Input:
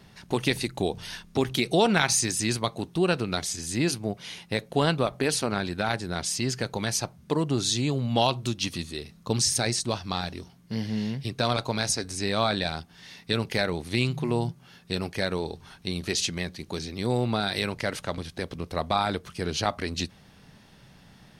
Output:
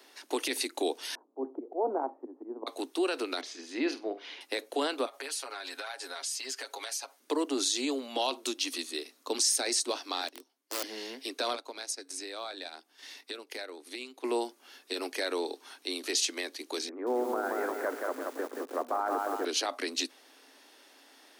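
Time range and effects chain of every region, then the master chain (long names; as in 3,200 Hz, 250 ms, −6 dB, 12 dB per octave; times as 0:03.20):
0:01.15–0:02.67: Butterworth low-pass 930 Hz + volume swells 142 ms
0:03.41–0:04.41: high-frequency loss of the air 260 metres + flutter between parallel walls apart 8.2 metres, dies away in 0.24 s
0:05.05–0:07.20: high-pass filter 650 Hz + comb filter 7.3 ms, depth 84% + downward compressor, threshold −35 dBFS
0:10.28–0:10.83: wrap-around overflow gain 26.5 dB + expander for the loud parts 2.5 to 1, over −43 dBFS
0:11.55–0:14.24: transient designer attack +3 dB, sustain −9 dB + downward compressor 2 to 1, threshold −44 dBFS
0:16.89–0:19.45: Butterworth low-pass 1,600 Hz + feedback echo at a low word length 177 ms, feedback 55%, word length 8 bits, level −4 dB
whole clip: Butterworth high-pass 260 Hz 96 dB per octave; brickwall limiter −19.5 dBFS; high-shelf EQ 5,300 Hz +7 dB; level −1.5 dB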